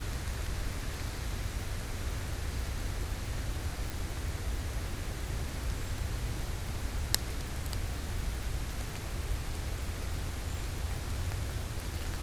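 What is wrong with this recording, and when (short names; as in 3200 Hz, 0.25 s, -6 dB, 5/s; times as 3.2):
crackle 110/s -40 dBFS
3.9 pop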